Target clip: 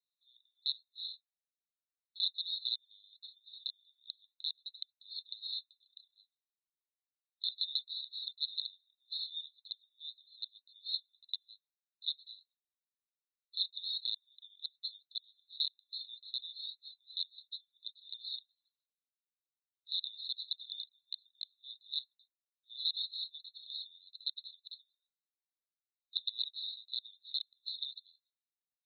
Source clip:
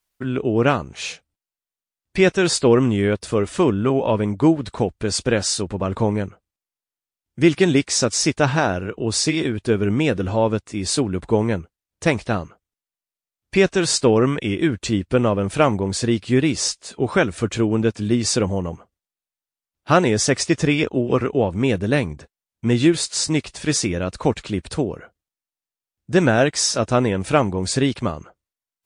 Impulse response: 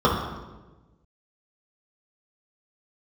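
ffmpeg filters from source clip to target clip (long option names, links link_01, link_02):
-filter_complex "[0:a]asplit=3[link_01][link_02][link_03];[link_01]afade=type=out:start_time=5.82:duration=0.02[link_04];[link_02]tremolo=f=30:d=0.667,afade=type=in:start_time=5.82:duration=0.02,afade=type=out:start_time=6.23:duration=0.02[link_05];[link_03]afade=type=in:start_time=6.23:duration=0.02[link_06];[link_04][link_05][link_06]amix=inputs=3:normalize=0,aeval=exprs='(mod(2.37*val(0)+1,2)-1)/2.37':channel_layout=same,asuperpass=centerf=3900:order=12:qfactor=5.6,volume=-4dB"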